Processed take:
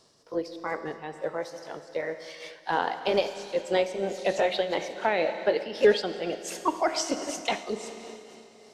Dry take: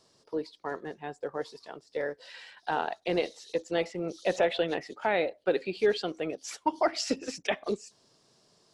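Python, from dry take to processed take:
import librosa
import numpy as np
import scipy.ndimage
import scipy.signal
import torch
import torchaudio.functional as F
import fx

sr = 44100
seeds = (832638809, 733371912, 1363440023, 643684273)

y = fx.pitch_ramps(x, sr, semitones=3.0, every_ms=835)
y = fx.rev_schroeder(y, sr, rt60_s=3.2, comb_ms=27, drr_db=9.0)
y = fx.am_noise(y, sr, seeds[0], hz=5.7, depth_pct=60)
y = y * 10.0 ** (6.5 / 20.0)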